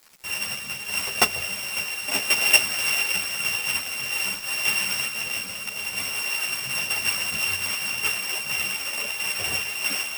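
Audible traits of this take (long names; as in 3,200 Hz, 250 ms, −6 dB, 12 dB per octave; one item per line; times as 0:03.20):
a buzz of ramps at a fixed pitch in blocks of 16 samples
tremolo saw down 0.87 Hz, depth 35%
a quantiser's noise floor 8 bits, dither none
a shimmering, thickened sound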